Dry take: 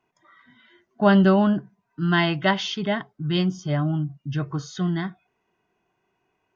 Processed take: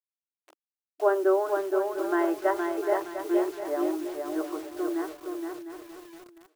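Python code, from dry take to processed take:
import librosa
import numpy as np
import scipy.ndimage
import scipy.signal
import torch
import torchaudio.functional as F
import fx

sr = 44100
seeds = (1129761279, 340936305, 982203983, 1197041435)

p1 = scipy.signal.sosfilt(scipy.signal.butter(4, 1300.0, 'lowpass', fs=sr, output='sos'), x)
p2 = fx.peak_eq(p1, sr, hz=950.0, db=-9.5, octaves=2.0)
p3 = fx.rider(p2, sr, range_db=4, speed_s=2.0)
p4 = p2 + (p3 * 10.0 ** (-2.0 / 20.0))
p5 = fx.quant_dither(p4, sr, seeds[0], bits=8, dither='none')
p6 = fx.brickwall_highpass(p5, sr, low_hz=310.0)
p7 = fx.echo_feedback(p6, sr, ms=702, feedback_pct=21, wet_db=-11)
y = fx.echo_crushed(p7, sr, ms=468, feedback_pct=35, bits=8, wet_db=-4.0)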